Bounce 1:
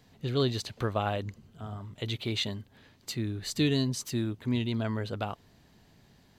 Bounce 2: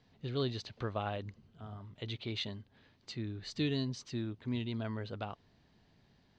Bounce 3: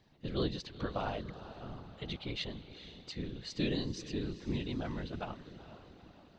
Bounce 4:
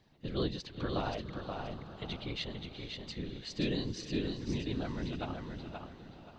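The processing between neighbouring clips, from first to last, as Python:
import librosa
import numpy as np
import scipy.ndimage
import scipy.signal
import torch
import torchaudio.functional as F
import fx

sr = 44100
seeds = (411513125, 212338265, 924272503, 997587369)

y1 = scipy.signal.sosfilt(scipy.signal.butter(4, 5500.0, 'lowpass', fs=sr, output='sos'), x)
y1 = y1 * librosa.db_to_amplitude(-7.0)
y2 = fx.echo_diffused(y1, sr, ms=450, feedback_pct=52, wet_db=-12.5)
y2 = fx.whisperise(y2, sr, seeds[0])
y3 = fx.echo_feedback(y2, sr, ms=528, feedback_pct=26, wet_db=-5.0)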